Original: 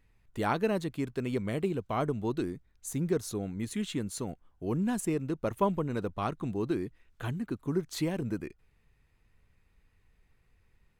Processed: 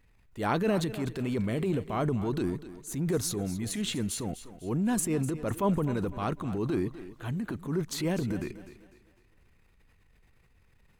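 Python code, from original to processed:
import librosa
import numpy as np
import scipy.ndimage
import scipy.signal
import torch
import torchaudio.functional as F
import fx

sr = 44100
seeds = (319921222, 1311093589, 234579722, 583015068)

y = fx.transient(x, sr, attack_db=-7, sustain_db=7)
y = fx.echo_thinned(y, sr, ms=250, feedback_pct=38, hz=180.0, wet_db=-13.5)
y = y * 10.0 ** (2.5 / 20.0)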